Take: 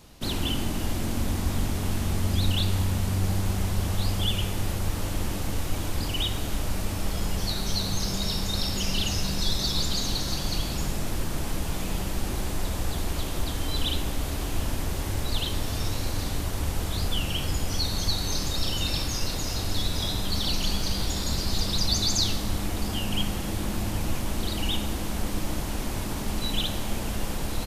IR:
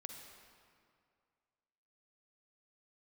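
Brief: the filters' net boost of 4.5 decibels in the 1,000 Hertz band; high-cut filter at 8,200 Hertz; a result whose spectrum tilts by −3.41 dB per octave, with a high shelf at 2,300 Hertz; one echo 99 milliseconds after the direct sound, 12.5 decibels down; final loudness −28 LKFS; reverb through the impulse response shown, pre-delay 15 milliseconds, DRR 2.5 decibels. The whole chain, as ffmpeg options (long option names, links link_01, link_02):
-filter_complex "[0:a]lowpass=8200,equalizer=frequency=1000:width_type=o:gain=5,highshelf=frequency=2300:gain=4,aecho=1:1:99:0.237,asplit=2[link_01][link_02];[1:a]atrim=start_sample=2205,adelay=15[link_03];[link_02][link_03]afir=irnorm=-1:irlink=0,volume=1.5dB[link_04];[link_01][link_04]amix=inputs=2:normalize=0,volume=-3dB"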